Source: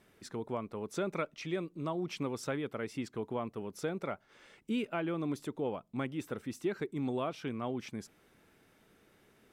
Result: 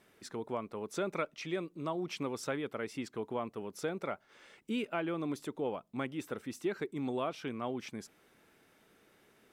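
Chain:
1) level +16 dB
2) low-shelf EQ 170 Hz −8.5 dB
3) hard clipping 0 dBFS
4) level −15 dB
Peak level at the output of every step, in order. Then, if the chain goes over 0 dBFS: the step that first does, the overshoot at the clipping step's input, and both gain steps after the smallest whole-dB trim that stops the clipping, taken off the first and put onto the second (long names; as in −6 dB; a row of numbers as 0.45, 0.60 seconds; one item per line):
−5.5, −5.0, −5.0, −20.0 dBFS
no step passes full scale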